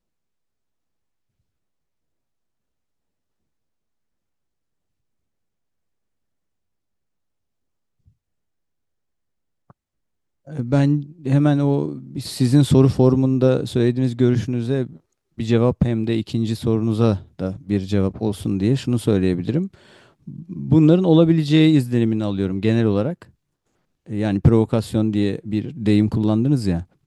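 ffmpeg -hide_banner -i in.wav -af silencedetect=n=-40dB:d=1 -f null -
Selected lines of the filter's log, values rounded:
silence_start: 0.00
silence_end: 9.70 | silence_duration: 9.70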